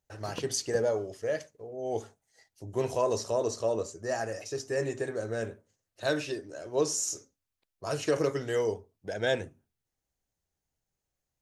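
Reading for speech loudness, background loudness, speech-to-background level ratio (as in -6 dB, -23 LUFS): -32.0 LUFS, -47.5 LUFS, 15.5 dB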